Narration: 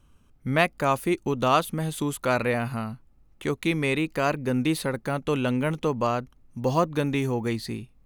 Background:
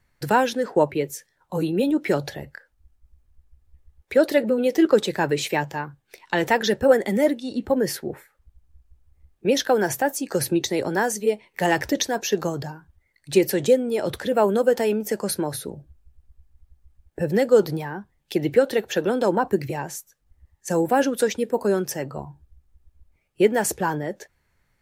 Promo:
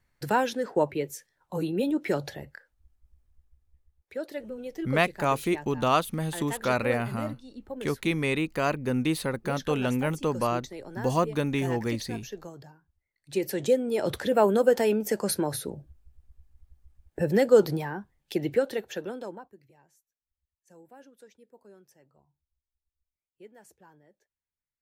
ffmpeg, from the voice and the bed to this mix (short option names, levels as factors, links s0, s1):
-filter_complex "[0:a]adelay=4400,volume=0.794[s0];[1:a]volume=2.99,afade=t=out:st=3.29:d=0.84:silence=0.266073,afade=t=in:st=13.15:d=0.95:silence=0.177828,afade=t=out:st=17.84:d=1.66:silence=0.0316228[s1];[s0][s1]amix=inputs=2:normalize=0"